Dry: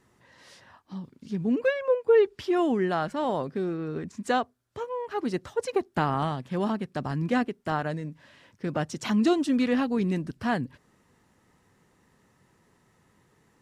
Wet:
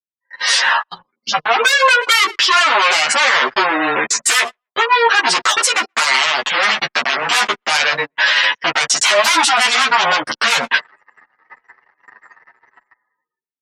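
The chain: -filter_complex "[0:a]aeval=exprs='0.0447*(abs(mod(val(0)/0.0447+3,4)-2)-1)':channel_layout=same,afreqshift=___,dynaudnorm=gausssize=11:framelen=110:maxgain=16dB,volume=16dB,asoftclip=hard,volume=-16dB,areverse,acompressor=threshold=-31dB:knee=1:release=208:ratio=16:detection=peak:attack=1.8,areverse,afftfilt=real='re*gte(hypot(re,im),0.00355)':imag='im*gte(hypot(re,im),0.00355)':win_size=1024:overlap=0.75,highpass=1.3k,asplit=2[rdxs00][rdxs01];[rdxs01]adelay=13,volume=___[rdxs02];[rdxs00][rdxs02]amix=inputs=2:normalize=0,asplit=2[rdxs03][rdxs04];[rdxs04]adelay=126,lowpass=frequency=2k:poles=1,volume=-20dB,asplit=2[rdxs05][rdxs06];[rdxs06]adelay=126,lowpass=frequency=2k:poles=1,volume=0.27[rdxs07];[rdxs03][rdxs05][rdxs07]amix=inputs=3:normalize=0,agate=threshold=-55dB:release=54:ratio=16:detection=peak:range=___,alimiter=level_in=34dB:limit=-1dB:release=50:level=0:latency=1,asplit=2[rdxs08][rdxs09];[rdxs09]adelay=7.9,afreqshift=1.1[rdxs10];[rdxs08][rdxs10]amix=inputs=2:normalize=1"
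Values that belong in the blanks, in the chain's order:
-16, -4dB, -42dB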